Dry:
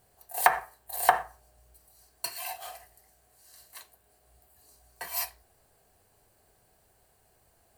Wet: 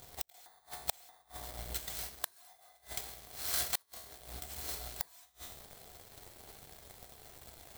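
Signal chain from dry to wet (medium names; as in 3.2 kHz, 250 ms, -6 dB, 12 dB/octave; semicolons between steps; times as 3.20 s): bit-reversed sample order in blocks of 16 samples; compression 8:1, threshold -33 dBFS, peak gain reduction 18.5 dB; saturation -22 dBFS, distortion -20 dB; waveshaping leveller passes 3; feedback comb 72 Hz, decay 0.62 s, harmonics all, mix 60%; de-hum 213.3 Hz, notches 3; inverted gate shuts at -34 dBFS, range -40 dB; trim +17 dB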